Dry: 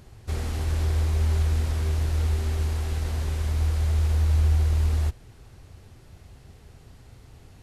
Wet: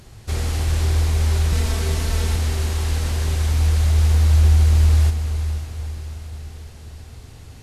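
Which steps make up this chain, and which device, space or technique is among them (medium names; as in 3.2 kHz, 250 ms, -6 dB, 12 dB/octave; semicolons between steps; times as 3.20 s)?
peaking EQ 7 kHz +5.5 dB 3 oct; saturated reverb return (on a send at -7 dB: reverberation RT60 2.3 s, pre-delay 8 ms + saturation -20 dBFS, distortion -17 dB); 1.52–2.36 s: on the sum: comb 4.5 ms, depth 80%; echo that smears into a reverb 476 ms, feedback 57%, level -9.5 dB; trim +4 dB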